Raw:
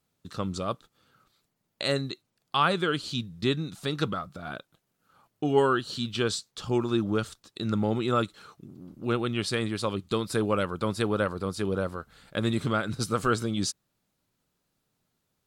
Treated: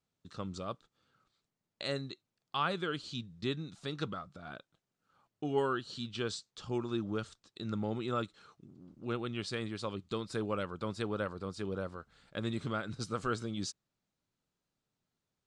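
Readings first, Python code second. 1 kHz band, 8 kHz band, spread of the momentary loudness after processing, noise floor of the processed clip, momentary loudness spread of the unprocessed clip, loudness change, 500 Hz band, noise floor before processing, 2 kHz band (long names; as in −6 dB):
−9.0 dB, −11.0 dB, 12 LU, below −85 dBFS, 12 LU, −9.0 dB, −9.0 dB, −78 dBFS, −9.0 dB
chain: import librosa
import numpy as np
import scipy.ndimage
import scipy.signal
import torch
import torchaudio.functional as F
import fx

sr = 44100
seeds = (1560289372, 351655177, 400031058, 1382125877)

y = scipy.signal.sosfilt(scipy.signal.butter(4, 8000.0, 'lowpass', fs=sr, output='sos'), x)
y = y * librosa.db_to_amplitude(-9.0)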